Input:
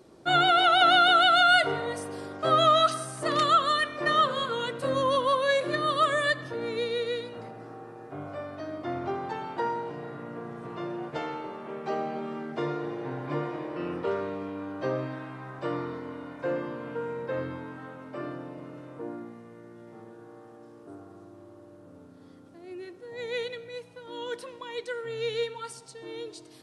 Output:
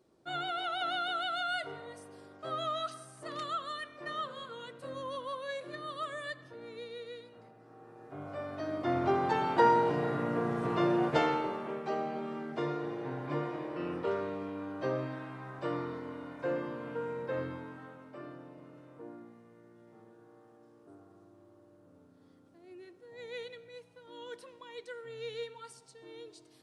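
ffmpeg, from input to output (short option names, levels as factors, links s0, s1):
-af "volume=2.24,afade=t=in:st=7.63:d=0.56:silence=0.354813,afade=t=in:st=8.19:d=1.67:silence=0.237137,afade=t=out:st=11.07:d=0.81:silence=0.298538,afade=t=out:st=17.42:d=0.77:silence=0.473151"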